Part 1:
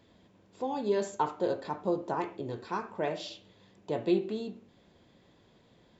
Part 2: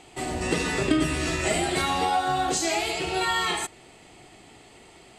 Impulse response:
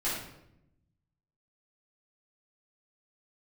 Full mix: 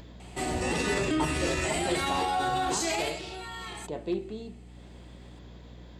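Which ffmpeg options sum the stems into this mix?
-filter_complex "[0:a]acompressor=mode=upward:threshold=0.0158:ratio=2.5,asoftclip=type=hard:threshold=0.126,volume=0.631[s0];[1:a]alimiter=limit=0.1:level=0:latency=1:release=19,adelay=200,volume=0.944,afade=t=out:st=2.95:d=0.25:silence=0.266073[s1];[s0][s1]amix=inputs=2:normalize=0,aeval=exprs='val(0)+0.00447*(sin(2*PI*60*n/s)+sin(2*PI*2*60*n/s)/2+sin(2*PI*3*60*n/s)/3+sin(2*PI*4*60*n/s)/4+sin(2*PI*5*60*n/s)/5)':c=same"

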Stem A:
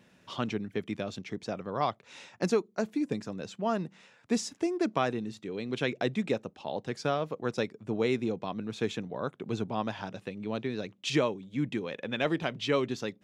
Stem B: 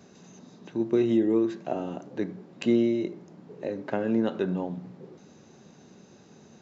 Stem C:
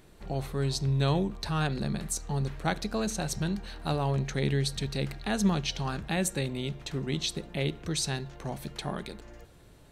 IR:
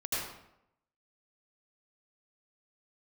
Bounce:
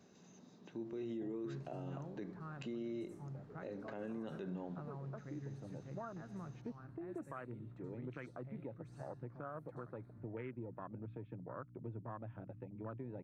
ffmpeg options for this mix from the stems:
-filter_complex "[0:a]afwtdn=0.02,aeval=exprs='val(0)+0.00501*(sin(2*PI*60*n/s)+sin(2*PI*2*60*n/s)/2+sin(2*PI*3*60*n/s)/3+sin(2*PI*4*60*n/s)/4+sin(2*PI*5*60*n/s)/5)':c=same,adelay=2350,volume=0.531[s0];[1:a]volume=0.282,asplit=2[s1][s2];[2:a]equalizer=f=3100:t=o:w=1.3:g=-12.5,adelay=900,volume=0.126,asplit=2[s3][s4];[s4]volume=0.0708[s5];[s2]apad=whole_len=687410[s6];[s0][s6]sidechaincompress=threshold=0.00282:ratio=8:attack=16:release=1150[s7];[s7][s3]amix=inputs=2:normalize=0,highpass=f=110:w=0.5412,highpass=f=110:w=1.3066,equalizer=f=110:t=q:w=4:g=9,equalizer=f=210:t=q:w=4:g=-9,equalizer=f=430:t=q:w=4:g=-7,equalizer=f=780:t=q:w=4:g=-5,equalizer=f=1300:t=q:w=4:g=6,lowpass=f=2300:w=0.5412,lowpass=f=2300:w=1.3066,acompressor=threshold=0.00794:ratio=5,volume=1[s8];[3:a]atrim=start_sample=2205[s9];[s5][s9]afir=irnorm=-1:irlink=0[s10];[s1][s8][s10]amix=inputs=3:normalize=0,alimiter=level_in=3.76:limit=0.0631:level=0:latency=1:release=57,volume=0.266"

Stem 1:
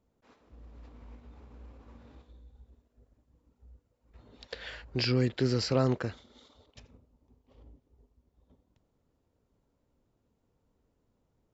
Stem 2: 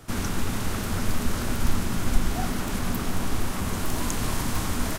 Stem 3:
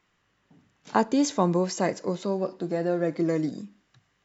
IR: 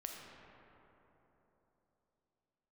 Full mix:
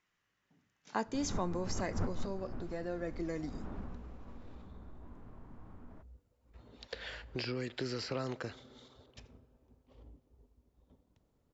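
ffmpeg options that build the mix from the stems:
-filter_complex "[0:a]acrossover=split=280|1300|3300[s0][s1][s2][s3];[s0]acompressor=threshold=0.00631:ratio=4[s4];[s1]acompressor=threshold=0.0126:ratio=4[s5];[s2]acompressor=threshold=0.00562:ratio=4[s6];[s3]acompressor=threshold=0.00501:ratio=4[s7];[s4][s5][s6][s7]amix=inputs=4:normalize=0,adelay=2400,volume=0.841,asplit=2[s8][s9];[s9]volume=0.168[s10];[1:a]lowpass=1000,alimiter=limit=0.119:level=0:latency=1:release=53,adelay=1050,volume=0.794,afade=t=out:st=1.85:d=0.74:silence=0.266073,afade=t=out:st=3.79:d=0.22:silence=0.298538[s11];[2:a]lowpass=f=6400:t=q:w=1.8,equalizer=f=1900:w=1.1:g=4.5,volume=0.211,asplit=2[s12][s13];[s13]apad=whole_len=266028[s14];[s11][s14]sidechaincompress=threshold=0.00398:ratio=8:attack=25:release=114[s15];[3:a]atrim=start_sample=2205[s16];[s10][s16]afir=irnorm=-1:irlink=0[s17];[s8][s15][s12][s17]amix=inputs=4:normalize=0"

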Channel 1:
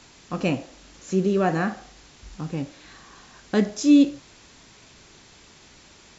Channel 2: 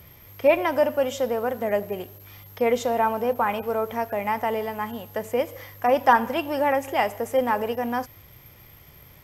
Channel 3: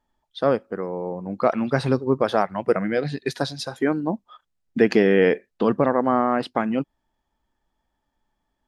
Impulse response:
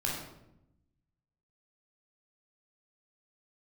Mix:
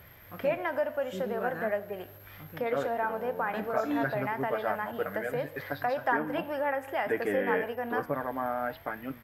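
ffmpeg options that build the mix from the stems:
-filter_complex "[0:a]volume=0.211[s0];[1:a]acompressor=threshold=0.0224:ratio=2,volume=0.944[s1];[2:a]lowpass=4700,aecho=1:1:6.8:0.65,adelay=2300,volume=0.237[s2];[s0][s1][s2]amix=inputs=3:normalize=0,equalizer=f=630:t=o:w=0.67:g=5,equalizer=f=1600:t=o:w=0.67:g=11,equalizer=f=6300:t=o:w=0.67:g=-9,flanger=delay=7.5:depth=7.8:regen=86:speed=0.66:shape=triangular"

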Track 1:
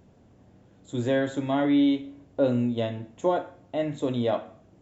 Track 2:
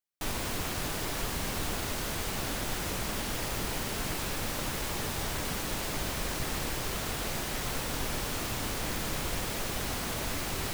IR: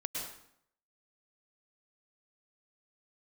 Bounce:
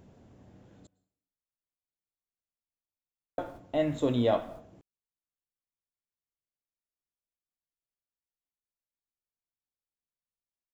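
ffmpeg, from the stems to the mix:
-filter_complex "[0:a]volume=0.944,asplit=3[s0][s1][s2];[s0]atrim=end=0.87,asetpts=PTS-STARTPTS,afade=t=out:st=0.866:d=0.004:c=hsin[s3];[s1]atrim=start=0.87:end=3.38,asetpts=PTS-STARTPTS,volume=0[s4];[s2]atrim=start=3.38,asetpts=PTS-STARTPTS,afade=t=in:d=0.004:c=hsin[s5];[s3][s4][s5]concat=n=3:v=0:a=1,asplit=3[s6][s7][s8];[s7]volume=0.0841[s9];[1:a]alimiter=level_in=1.68:limit=0.0631:level=0:latency=1,volume=0.596,afwtdn=0.0112,adelay=1050,volume=0.266[s10];[s8]apad=whole_len=519589[s11];[s10][s11]sidechaingate=range=0.00158:threshold=0.00398:ratio=16:detection=peak[s12];[2:a]atrim=start_sample=2205[s13];[s9][s13]afir=irnorm=-1:irlink=0[s14];[s6][s12][s14]amix=inputs=3:normalize=0"

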